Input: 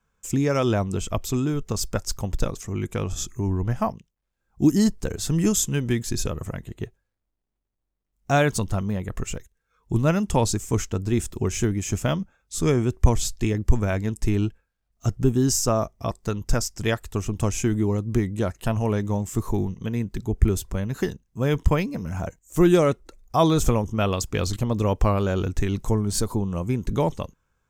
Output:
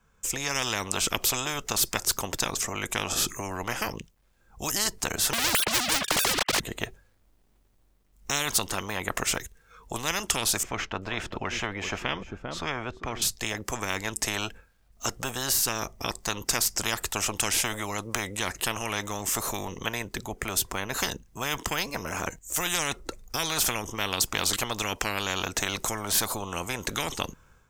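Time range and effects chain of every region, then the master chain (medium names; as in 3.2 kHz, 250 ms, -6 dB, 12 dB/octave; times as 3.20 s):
5.33–6.60 s: formants replaced by sine waves + waveshaping leveller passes 5
10.63–13.22 s: distance through air 320 m + delay 397 ms -20 dB
whole clip: level rider; spectrum-flattening compressor 10:1; trim -1 dB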